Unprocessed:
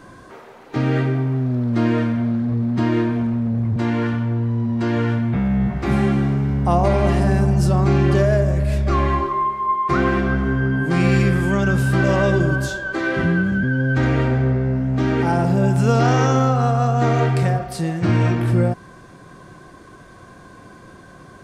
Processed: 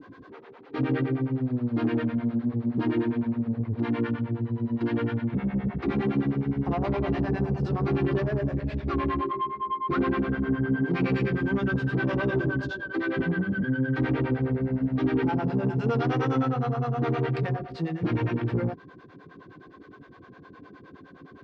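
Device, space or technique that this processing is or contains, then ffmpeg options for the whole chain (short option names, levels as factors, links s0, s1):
guitar amplifier with harmonic tremolo: -filter_complex "[0:a]acrossover=split=440[s0][s1];[s0]aeval=exprs='val(0)*(1-1/2+1/2*cos(2*PI*9.7*n/s))':c=same[s2];[s1]aeval=exprs='val(0)*(1-1/2-1/2*cos(2*PI*9.7*n/s))':c=same[s3];[s2][s3]amix=inputs=2:normalize=0,asoftclip=type=tanh:threshold=0.126,highpass=77,equalizer=f=280:t=q:w=4:g=9,equalizer=f=430:t=q:w=4:g=7,equalizer=f=620:t=q:w=4:g=-6,lowpass=f=4100:w=0.5412,lowpass=f=4100:w=1.3066,volume=0.708"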